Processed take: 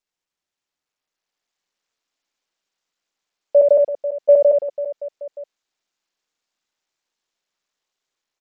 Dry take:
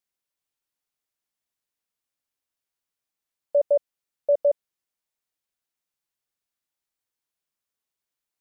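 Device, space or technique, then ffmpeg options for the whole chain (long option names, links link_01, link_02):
Bluetooth headset: -filter_complex "[0:a]asettb=1/sr,asplit=3[link_01][link_02][link_03];[link_01]atrim=end=3.564[link_04];[link_02]atrim=start=3.56:end=4.36,asetpts=PTS-STARTPTS,afade=type=in:duration=0.004:curve=qsin,afade=type=out:start_time=0.796:duration=0.004:curve=qsin,lowshelf=frequency=440:gain=3.5[link_05];[link_03]atrim=start=4.356[link_06];[link_04][link_05]acrossfade=duration=0.004:curve1=hsin:curve2=qsin[link_07];[link_07][link_06]acrossfade=duration=0.004:curve1=qsin:curve2=hsin,highpass=250,aecho=1:1:70|175|332.5|568.8|923.1:0.631|0.398|0.251|0.158|0.1,dynaudnorm=framelen=210:gausssize=11:maxgain=7dB,aresample=16000,aresample=44100" -ar 44100 -c:a sbc -b:a 64k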